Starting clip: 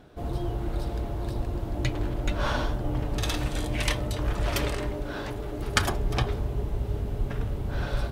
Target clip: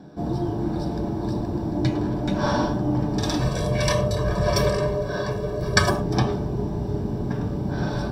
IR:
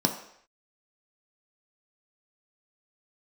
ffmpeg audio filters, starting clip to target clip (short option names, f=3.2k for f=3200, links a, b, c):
-filter_complex "[0:a]asettb=1/sr,asplit=3[a][b][c];[a]atrim=end=3.394[d];[b]atrim=start=3.39:end=5.91,asetpts=PTS-STARTPTS,afade=t=in:d=0.004:c=qsin,afade=t=out:st=2.516:d=0.004:c=qsin,aecho=1:1:1.8:0.9,atrim=end_sample=111132[e];[c]atrim=start=5.906[f];[d][e]acrossfade=d=0.004:c1=hsin:c2=qsin[g];[g][f]acrossfade=d=0.004:c1=qsin:c2=hsin[h];[1:a]atrim=start_sample=2205,afade=t=out:st=0.17:d=0.01,atrim=end_sample=7938[i];[h][i]afir=irnorm=-1:irlink=0,volume=-7.5dB"